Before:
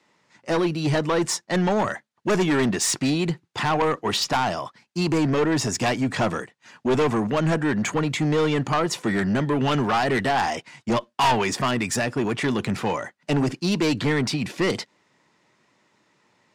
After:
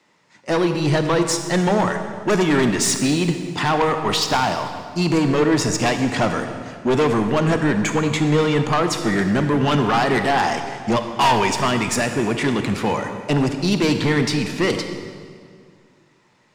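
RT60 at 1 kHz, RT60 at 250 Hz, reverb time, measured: 1.9 s, 2.4 s, 2.0 s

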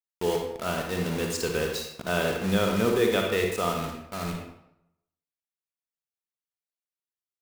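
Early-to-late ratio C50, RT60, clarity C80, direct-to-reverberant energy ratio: 3.0 dB, 0.80 s, 6.5 dB, 1.5 dB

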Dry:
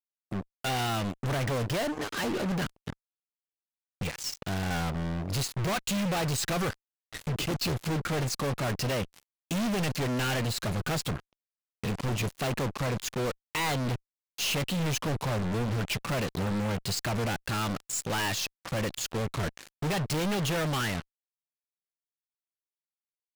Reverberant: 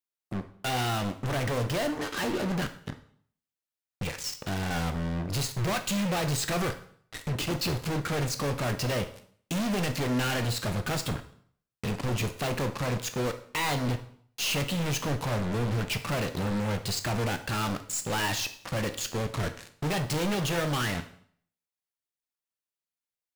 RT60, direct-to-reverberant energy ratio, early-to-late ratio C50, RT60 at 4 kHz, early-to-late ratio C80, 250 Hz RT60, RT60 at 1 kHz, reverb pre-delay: 0.60 s, 7.5 dB, 12.0 dB, 0.55 s, 16.5 dB, 0.65 s, 0.60 s, 6 ms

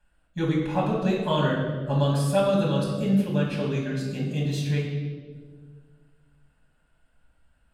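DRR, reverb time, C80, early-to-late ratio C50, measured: −4.0 dB, 1.7 s, 5.0 dB, 2.5 dB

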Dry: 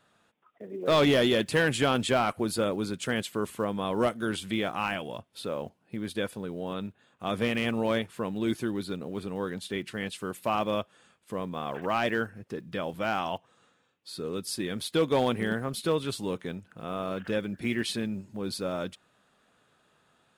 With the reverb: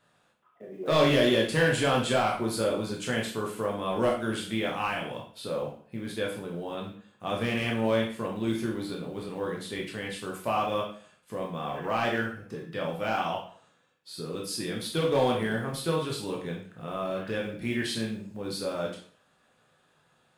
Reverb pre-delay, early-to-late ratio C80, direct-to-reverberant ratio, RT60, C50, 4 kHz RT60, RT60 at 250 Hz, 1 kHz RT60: 7 ms, 10.5 dB, −2.0 dB, 0.50 s, 5.5 dB, 0.45 s, 0.45 s, 0.50 s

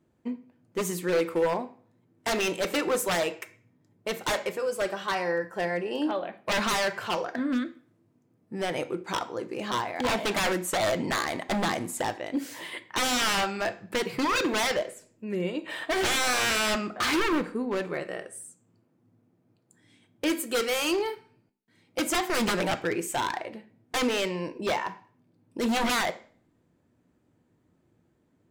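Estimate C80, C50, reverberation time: 20.5 dB, 16.5 dB, 0.50 s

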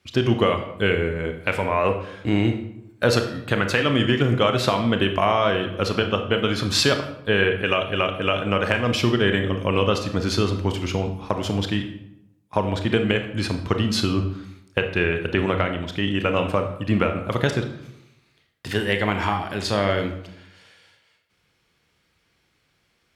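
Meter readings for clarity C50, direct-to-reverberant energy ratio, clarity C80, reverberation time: 8.5 dB, 5.5 dB, 11.5 dB, 0.80 s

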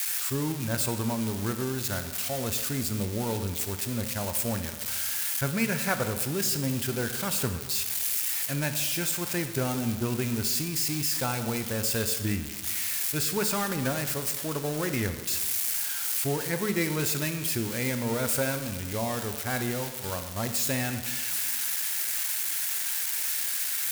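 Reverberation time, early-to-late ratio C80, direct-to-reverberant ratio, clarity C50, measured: 1.5 s, 10.5 dB, 8.0 dB, 9.5 dB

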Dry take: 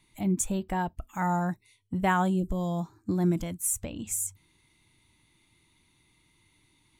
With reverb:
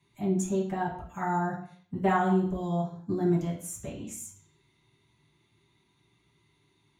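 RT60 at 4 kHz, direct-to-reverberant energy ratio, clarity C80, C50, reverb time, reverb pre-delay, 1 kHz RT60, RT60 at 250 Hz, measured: 0.55 s, −7.5 dB, 11.0 dB, 7.0 dB, 0.55 s, 3 ms, 0.55 s, 0.55 s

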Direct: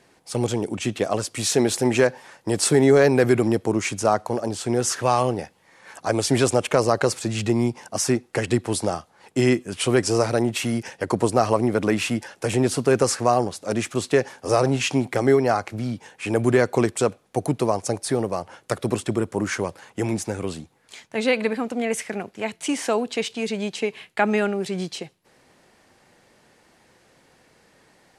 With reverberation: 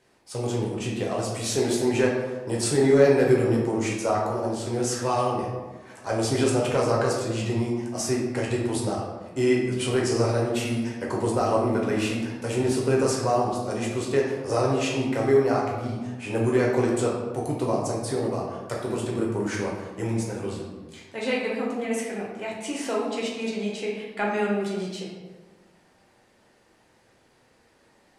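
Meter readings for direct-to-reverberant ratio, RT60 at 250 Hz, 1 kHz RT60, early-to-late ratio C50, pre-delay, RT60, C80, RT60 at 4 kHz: −3.5 dB, 1.6 s, 1.2 s, 2.0 dB, 6 ms, 1.3 s, 4.5 dB, 0.75 s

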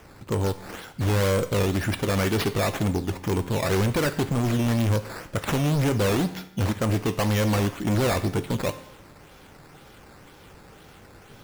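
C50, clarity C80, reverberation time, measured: 14.0 dB, 16.0 dB, 0.80 s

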